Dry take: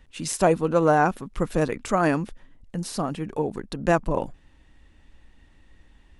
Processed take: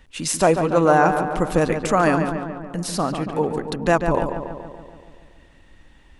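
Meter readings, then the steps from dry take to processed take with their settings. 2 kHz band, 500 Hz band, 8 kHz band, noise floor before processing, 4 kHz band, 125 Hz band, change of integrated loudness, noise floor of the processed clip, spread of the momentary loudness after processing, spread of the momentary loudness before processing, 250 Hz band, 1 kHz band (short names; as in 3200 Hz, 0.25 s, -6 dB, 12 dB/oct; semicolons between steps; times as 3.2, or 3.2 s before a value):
+5.0 dB, +4.0 dB, +5.5 dB, -56 dBFS, +6.0 dB, +3.5 dB, +4.0 dB, -51 dBFS, 13 LU, 11 LU, +4.0 dB, +5.0 dB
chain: low shelf 340 Hz -4.5 dB; in parallel at 0 dB: limiter -15 dBFS, peak gain reduction 6.5 dB; on the sum: darkening echo 0.142 s, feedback 63%, low-pass 2900 Hz, level -7 dB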